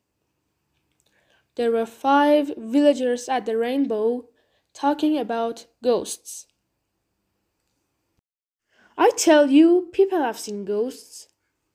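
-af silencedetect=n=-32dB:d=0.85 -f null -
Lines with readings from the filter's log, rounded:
silence_start: 0.00
silence_end: 1.57 | silence_duration: 1.57
silence_start: 6.40
silence_end: 8.98 | silence_duration: 2.58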